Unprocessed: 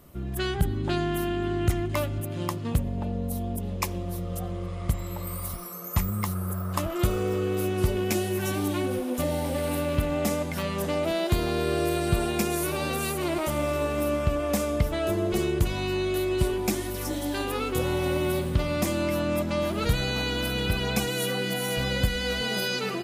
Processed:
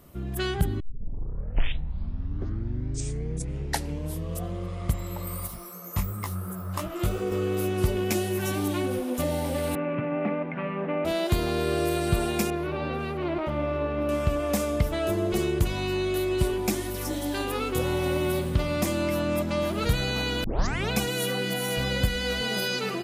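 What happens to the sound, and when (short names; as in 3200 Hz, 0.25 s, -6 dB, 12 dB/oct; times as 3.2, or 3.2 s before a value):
0.8 tape start 3.74 s
5.47–7.32 chorus 2.8 Hz, delay 16 ms, depth 4.5 ms
9.75–11.05 Chebyshev band-pass 130–2500 Hz, order 4
12.5–14.09 air absorption 350 m
20.44 tape start 0.47 s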